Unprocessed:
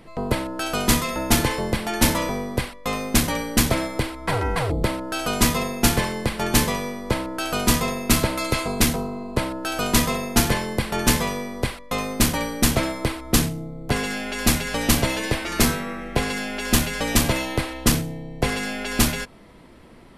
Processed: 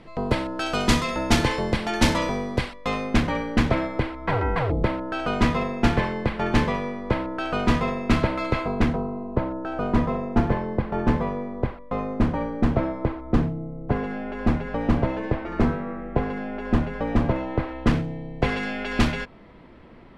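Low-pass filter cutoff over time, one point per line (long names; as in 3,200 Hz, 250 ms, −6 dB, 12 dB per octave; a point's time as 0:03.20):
0:02.74 5,100 Hz
0:03.25 2,300 Hz
0:08.46 2,300 Hz
0:09.22 1,100 Hz
0:17.47 1,100 Hz
0:18.22 2,900 Hz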